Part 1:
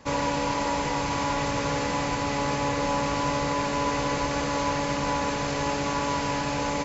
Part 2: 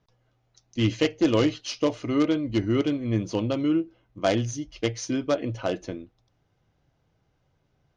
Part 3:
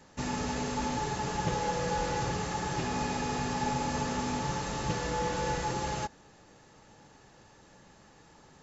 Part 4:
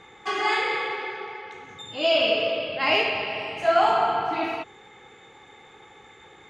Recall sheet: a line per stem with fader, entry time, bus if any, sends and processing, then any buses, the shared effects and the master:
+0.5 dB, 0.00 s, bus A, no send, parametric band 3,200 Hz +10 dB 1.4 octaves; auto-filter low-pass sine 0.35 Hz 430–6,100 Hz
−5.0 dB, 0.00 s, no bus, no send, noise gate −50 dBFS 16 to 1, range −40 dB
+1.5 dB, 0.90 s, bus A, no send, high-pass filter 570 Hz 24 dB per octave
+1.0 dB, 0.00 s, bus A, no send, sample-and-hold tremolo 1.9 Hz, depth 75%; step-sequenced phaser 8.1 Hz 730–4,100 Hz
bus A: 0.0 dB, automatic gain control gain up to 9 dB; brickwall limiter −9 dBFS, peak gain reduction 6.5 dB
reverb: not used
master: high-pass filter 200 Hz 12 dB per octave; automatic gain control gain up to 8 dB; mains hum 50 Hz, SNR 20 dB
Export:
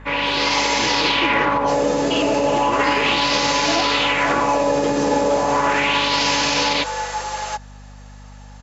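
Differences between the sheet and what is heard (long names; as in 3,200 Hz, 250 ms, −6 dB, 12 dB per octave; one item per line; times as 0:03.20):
stem 3: entry 0.90 s → 1.50 s
master: missing automatic gain control gain up to 8 dB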